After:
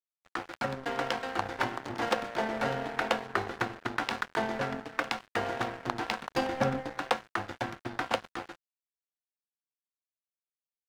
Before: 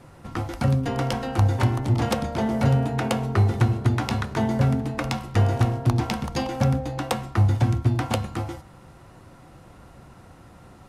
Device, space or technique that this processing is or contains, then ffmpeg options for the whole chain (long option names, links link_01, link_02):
pocket radio on a weak battery: -filter_complex "[0:a]highpass=390,lowpass=4400,aeval=exprs='sgn(val(0))*max(abs(val(0))-0.015,0)':channel_layout=same,equalizer=frequency=1600:width_type=o:width=0.46:gain=5,asettb=1/sr,asplit=3[link_01][link_02][link_03];[link_01]atrim=end=6.304[link_04];[link_02]atrim=start=6.3:end=6.93,asetpts=PTS-STARTPTS,afade=type=in:duration=0.004:curve=qsin,afade=type=out:start_time=0.626:duration=0.004:curve=qsin,lowshelf=frequency=490:gain=7[link_05];[link_03]atrim=start=6.926[link_06];[link_04][link_05]acrossfade=duration=0.004:curve1=hsin:curve2=qsin[link_07];[link_07][link_06]acrossfade=duration=0.004:curve1=qsin:curve2=hsin"